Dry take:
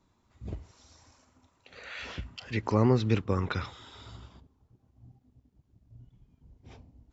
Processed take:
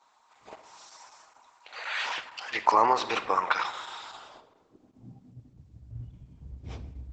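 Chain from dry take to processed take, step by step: high-pass sweep 880 Hz -> 60 Hz, 4.11–5.82 s; 2.12–3.03 s: dynamic bell 340 Hz, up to +3 dB, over -51 dBFS, Q 6.2; 4.19–5.98 s: de-hum 93.79 Hz, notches 11; reverberation RT60 1.4 s, pre-delay 6 ms, DRR 10.5 dB; trim +7.5 dB; Opus 10 kbps 48 kHz

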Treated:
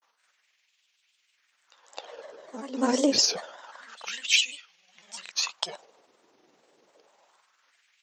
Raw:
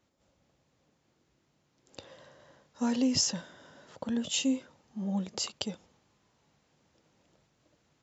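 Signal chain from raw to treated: reverse echo 261 ms -14 dB; LFO high-pass sine 0.27 Hz 360–2800 Hz; granulator 89 ms, grains 20 per s, spray 24 ms, pitch spread up and down by 3 st; trim +7.5 dB

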